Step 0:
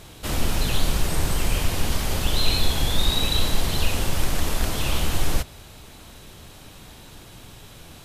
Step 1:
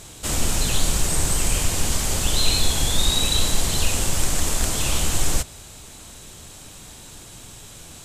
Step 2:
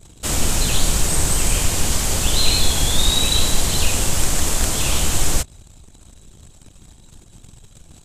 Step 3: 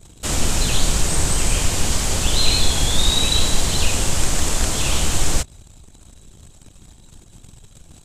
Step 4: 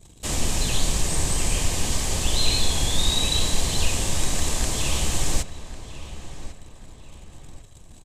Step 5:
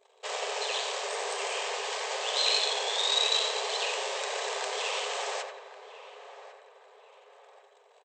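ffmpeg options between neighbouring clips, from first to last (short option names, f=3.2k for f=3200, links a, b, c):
-af "equalizer=f=7.6k:t=o:w=0.83:g=12.5"
-af "anlmdn=0.631,volume=3dB"
-filter_complex "[0:a]acrossover=split=9600[a][b];[b]acompressor=threshold=-39dB:ratio=4:attack=1:release=60[c];[a][c]amix=inputs=2:normalize=0"
-filter_complex "[0:a]bandreject=f=1.4k:w=6.3,asplit=2[a][b];[b]adelay=1100,lowpass=f=2.9k:p=1,volume=-13dB,asplit=2[c][d];[d]adelay=1100,lowpass=f=2.9k:p=1,volume=0.42,asplit=2[e][f];[f]adelay=1100,lowpass=f=2.9k:p=1,volume=0.42,asplit=2[g][h];[h]adelay=1100,lowpass=f=2.9k:p=1,volume=0.42[i];[a][c][e][g][i]amix=inputs=5:normalize=0,volume=-4.5dB"
-filter_complex "[0:a]asplit=2[a][b];[b]adelay=88,lowpass=f=2.8k:p=1,volume=-4dB,asplit=2[c][d];[d]adelay=88,lowpass=f=2.8k:p=1,volume=0.47,asplit=2[e][f];[f]adelay=88,lowpass=f=2.8k:p=1,volume=0.47,asplit=2[g][h];[h]adelay=88,lowpass=f=2.8k:p=1,volume=0.47,asplit=2[i][j];[j]adelay=88,lowpass=f=2.8k:p=1,volume=0.47,asplit=2[k][l];[l]adelay=88,lowpass=f=2.8k:p=1,volume=0.47[m];[a][c][e][g][i][k][m]amix=inputs=7:normalize=0,adynamicsmooth=sensitivity=2:basefreq=2.5k,afftfilt=real='re*between(b*sr/4096,390,8600)':imag='im*between(b*sr/4096,390,8600)':win_size=4096:overlap=0.75"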